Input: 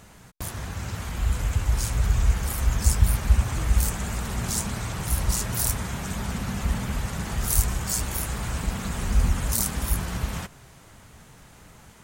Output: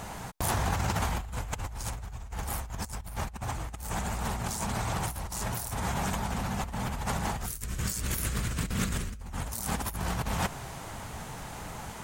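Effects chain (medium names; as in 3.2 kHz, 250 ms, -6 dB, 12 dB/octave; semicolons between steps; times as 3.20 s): peaking EQ 820 Hz +9 dB 0.79 oct, from 7.46 s -9 dB, from 9.21 s +7 dB; compressor with a negative ratio -34 dBFS, ratio -1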